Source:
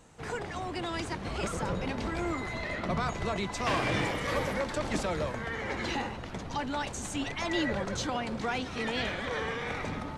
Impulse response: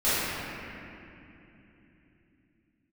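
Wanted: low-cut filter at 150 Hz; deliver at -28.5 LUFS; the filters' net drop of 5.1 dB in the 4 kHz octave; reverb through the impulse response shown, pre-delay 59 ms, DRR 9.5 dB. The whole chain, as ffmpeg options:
-filter_complex "[0:a]highpass=150,equalizer=f=4000:t=o:g=-7,asplit=2[s0][s1];[1:a]atrim=start_sample=2205,adelay=59[s2];[s1][s2]afir=irnorm=-1:irlink=0,volume=0.0501[s3];[s0][s3]amix=inputs=2:normalize=0,volume=1.78"

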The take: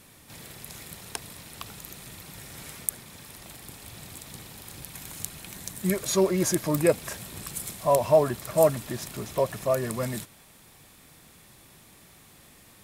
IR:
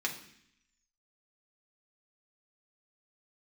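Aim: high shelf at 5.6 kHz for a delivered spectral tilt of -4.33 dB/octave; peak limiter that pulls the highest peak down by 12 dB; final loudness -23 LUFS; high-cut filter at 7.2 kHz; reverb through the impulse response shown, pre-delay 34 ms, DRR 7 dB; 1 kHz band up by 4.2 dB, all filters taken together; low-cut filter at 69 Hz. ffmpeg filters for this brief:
-filter_complex "[0:a]highpass=69,lowpass=7200,equalizer=f=1000:t=o:g=5,highshelf=f=5600:g=5,alimiter=limit=0.133:level=0:latency=1,asplit=2[s0][s1];[1:a]atrim=start_sample=2205,adelay=34[s2];[s1][s2]afir=irnorm=-1:irlink=0,volume=0.251[s3];[s0][s3]amix=inputs=2:normalize=0,volume=2.66"

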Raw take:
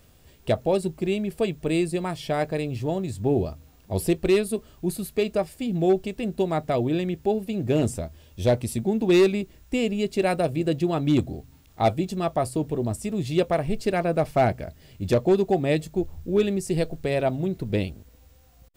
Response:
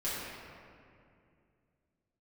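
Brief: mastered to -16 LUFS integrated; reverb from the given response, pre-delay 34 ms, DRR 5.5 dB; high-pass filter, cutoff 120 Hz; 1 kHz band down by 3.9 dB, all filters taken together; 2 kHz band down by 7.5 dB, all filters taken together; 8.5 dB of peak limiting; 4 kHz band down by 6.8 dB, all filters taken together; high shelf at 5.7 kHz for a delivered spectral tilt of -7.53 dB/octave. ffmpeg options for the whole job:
-filter_complex "[0:a]highpass=120,equalizer=f=1000:t=o:g=-5,equalizer=f=2000:t=o:g=-6.5,equalizer=f=4000:t=o:g=-4.5,highshelf=f=5700:g=-4,alimiter=limit=0.106:level=0:latency=1,asplit=2[s0][s1];[1:a]atrim=start_sample=2205,adelay=34[s2];[s1][s2]afir=irnorm=-1:irlink=0,volume=0.266[s3];[s0][s3]amix=inputs=2:normalize=0,volume=4.22"

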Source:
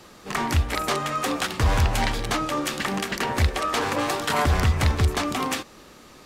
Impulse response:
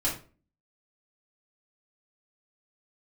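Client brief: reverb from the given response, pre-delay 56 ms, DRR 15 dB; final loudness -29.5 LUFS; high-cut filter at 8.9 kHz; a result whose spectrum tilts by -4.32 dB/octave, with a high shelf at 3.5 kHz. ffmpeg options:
-filter_complex "[0:a]lowpass=8900,highshelf=f=3500:g=3,asplit=2[s0][s1];[1:a]atrim=start_sample=2205,adelay=56[s2];[s1][s2]afir=irnorm=-1:irlink=0,volume=0.075[s3];[s0][s3]amix=inputs=2:normalize=0,volume=0.501"

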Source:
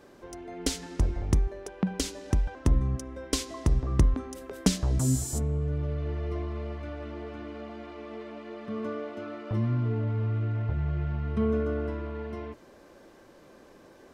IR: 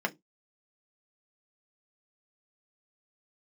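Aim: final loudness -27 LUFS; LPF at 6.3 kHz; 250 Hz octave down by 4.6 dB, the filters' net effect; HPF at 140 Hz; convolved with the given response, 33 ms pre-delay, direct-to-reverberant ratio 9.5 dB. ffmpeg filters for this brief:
-filter_complex "[0:a]highpass=140,lowpass=6300,equalizer=f=250:t=o:g=-5,asplit=2[s0][s1];[1:a]atrim=start_sample=2205,adelay=33[s2];[s1][s2]afir=irnorm=-1:irlink=0,volume=0.133[s3];[s0][s3]amix=inputs=2:normalize=0,volume=2.66"

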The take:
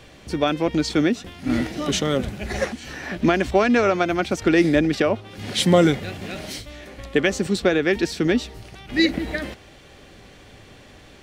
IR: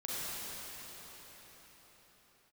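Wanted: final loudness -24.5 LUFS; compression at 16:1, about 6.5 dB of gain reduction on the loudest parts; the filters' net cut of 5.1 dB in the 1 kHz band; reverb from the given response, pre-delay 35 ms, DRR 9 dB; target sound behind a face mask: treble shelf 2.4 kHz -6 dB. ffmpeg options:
-filter_complex "[0:a]equalizer=f=1000:t=o:g=-7,acompressor=threshold=0.112:ratio=16,asplit=2[s0][s1];[1:a]atrim=start_sample=2205,adelay=35[s2];[s1][s2]afir=irnorm=-1:irlink=0,volume=0.211[s3];[s0][s3]amix=inputs=2:normalize=0,highshelf=f=2400:g=-6,volume=1.33"

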